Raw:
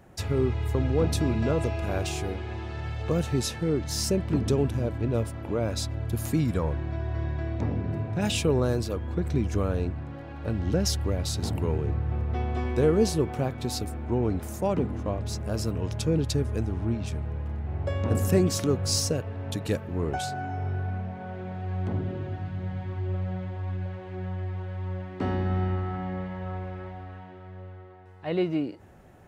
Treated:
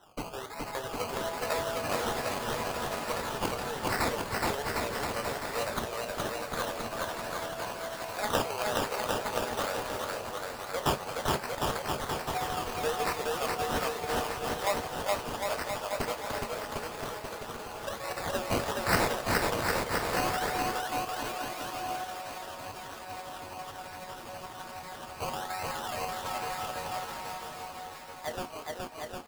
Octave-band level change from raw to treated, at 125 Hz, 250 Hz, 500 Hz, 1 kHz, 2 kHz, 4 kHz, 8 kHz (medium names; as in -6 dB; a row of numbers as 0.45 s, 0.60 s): -16.0 dB, -11.0 dB, -4.0 dB, +6.0 dB, +6.5 dB, 0.0 dB, -2.5 dB